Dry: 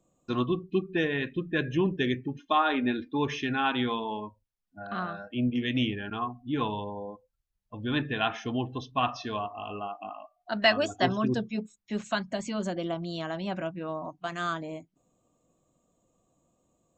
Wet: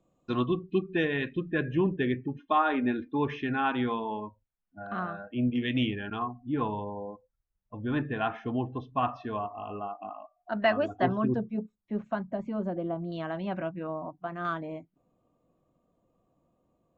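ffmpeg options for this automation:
-af "asetnsamples=n=441:p=0,asendcmd='1.53 lowpass f 2100;5.41 lowpass f 3500;6.22 lowpass f 1600;11.36 lowpass f 1000;13.12 lowpass f 2200;13.87 lowpass f 1200;14.45 lowpass f 2300',lowpass=4000"

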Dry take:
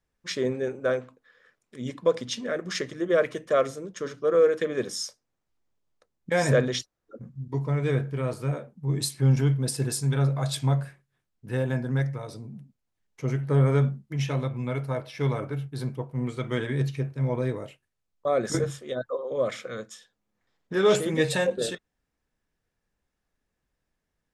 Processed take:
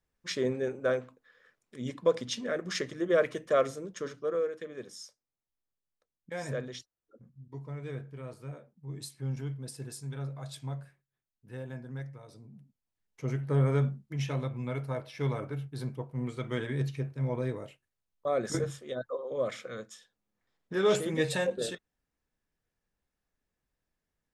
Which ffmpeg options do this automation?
-af "volume=2,afade=t=out:st=3.94:d=0.56:silence=0.281838,afade=t=in:st=12.23:d=1.07:silence=0.354813"

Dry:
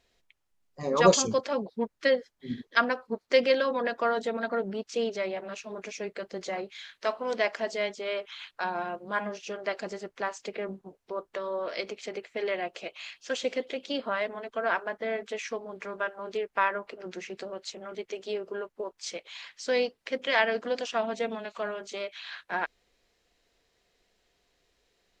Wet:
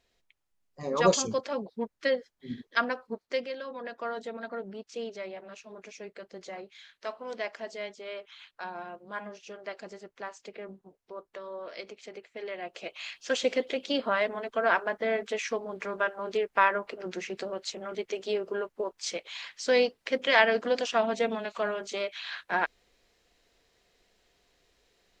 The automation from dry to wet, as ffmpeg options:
-af "volume=5.01,afade=t=out:st=3.08:d=0.43:silence=0.281838,afade=t=in:st=3.51:d=0.62:silence=0.473151,afade=t=in:st=12.56:d=0.58:silence=0.298538"

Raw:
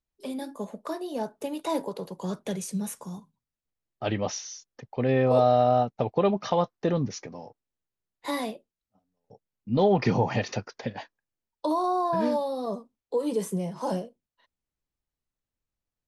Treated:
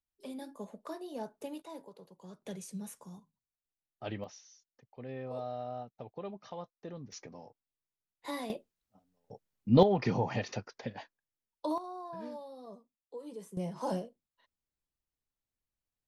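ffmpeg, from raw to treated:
-af "asetnsamples=n=441:p=0,asendcmd='1.62 volume volume -18.5dB;2.42 volume volume -11dB;4.24 volume volume -19dB;7.12 volume volume -8.5dB;8.5 volume volume 2.5dB;9.83 volume volume -7dB;11.78 volume volume -17.5dB;13.57 volume volume -5dB',volume=0.355"

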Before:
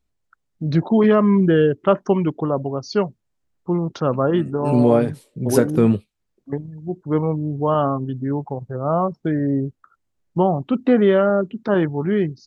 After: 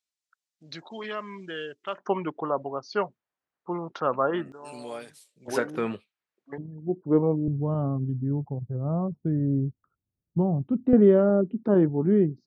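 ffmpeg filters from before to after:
-af "asetnsamples=n=441:p=0,asendcmd='1.98 bandpass f 1300;4.52 bandpass f 7000;5.48 bandpass f 1800;6.58 bandpass f 370;7.48 bandpass f 110;10.93 bandpass f 260',bandpass=f=5700:t=q:w=0.83:csg=0"

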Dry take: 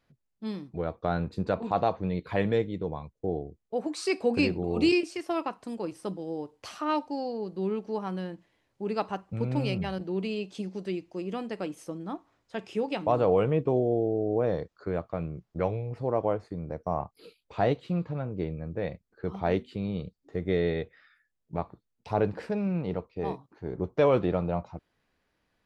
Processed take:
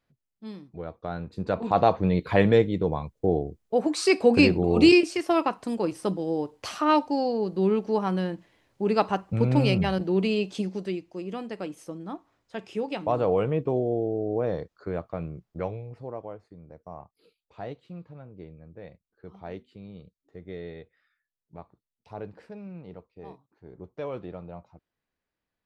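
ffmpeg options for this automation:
-af "volume=2.24,afade=t=in:st=1.29:d=0.66:silence=0.251189,afade=t=out:st=10.49:d=0.54:silence=0.421697,afade=t=out:st=15.31:d=0.96:silence=0.266073"

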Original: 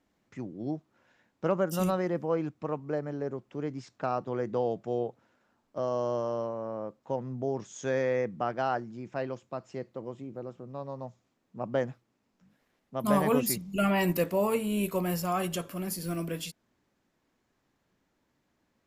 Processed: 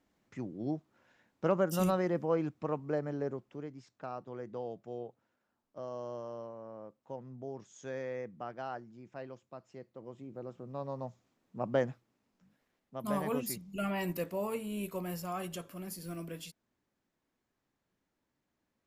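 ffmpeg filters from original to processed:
-af "volume=2.82,afade=t=out:st=3.24:d=0.47:silence=0.334965,afade=t=in:st=9.91:d=0.95:silence=0.298538,afade=t=out:st=11.73:d=1.32:silence=0.398107"

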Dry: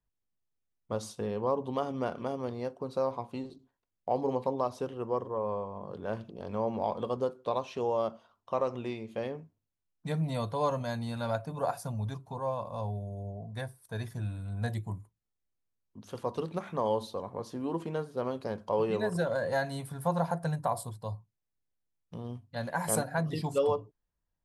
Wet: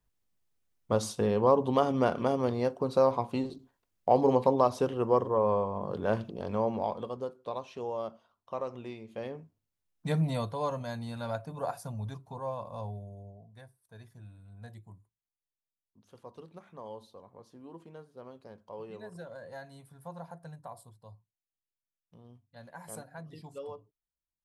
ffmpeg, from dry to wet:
-af "volume=5.96,afade=t=out:st=6.1:d=1.02:silence=0.251189,afade=t=in:st=9.05:d=1.13:silence=0.354813,afade=t=out:st=10.18:d=0.38:silence=0.473151,afade=t=out:st=12.78:d=0.74:silence=0.266073"

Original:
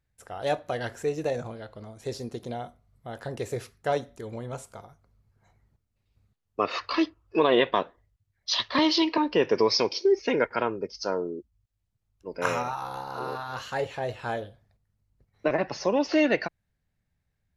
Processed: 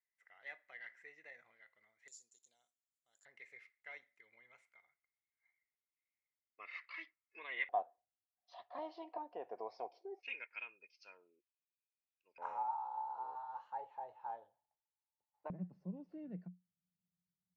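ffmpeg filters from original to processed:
-af "asetnsamples=n=441:p=0,asendcmd='2.08 bandpass f 7100;3.25 bandpass f 2100;7.69 bandpass f 730;10.23 bandpass f 2500;12.38 bandpass f 870;15.5 bandpass f 180',bandpass=f=2000:t=q:w=18:csg=0"

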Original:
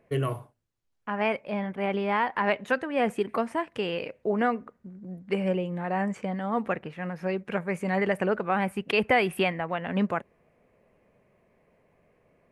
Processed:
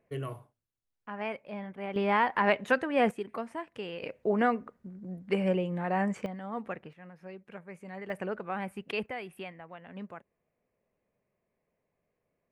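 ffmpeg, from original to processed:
-af "asetnsamples=n=441:p=0,asendcmd='1.96 volume volume 0dB;3.11 volume volume -9dB;4.03 volume volume -1dB;6.26 volume volume -9dB;6.93 volume volume -16dB;8.1 volume volume -9dB;9.06 volume volume -16.5dB',volume=0.355"

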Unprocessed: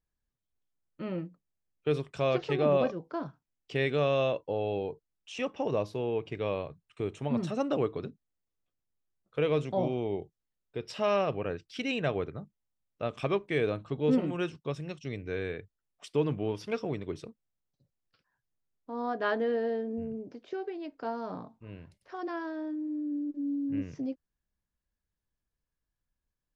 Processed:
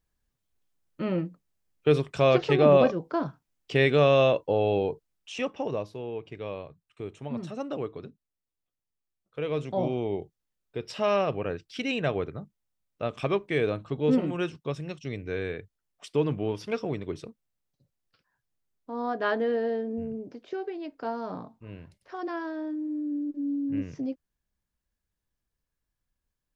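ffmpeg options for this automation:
-af "volume=4.73,afade=t=out:st=4.89:d=1.01:silence=0.281838,afade=t=in:st=9.41:d=0.49:silence=0.473151"

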